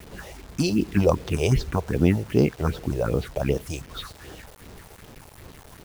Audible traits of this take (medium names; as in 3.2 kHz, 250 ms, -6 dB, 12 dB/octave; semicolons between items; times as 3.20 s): phasing stages 4, 2.6 Hz, lowest notch 230–2200 Hz; a quantiser's noise floor 8-bit, dither none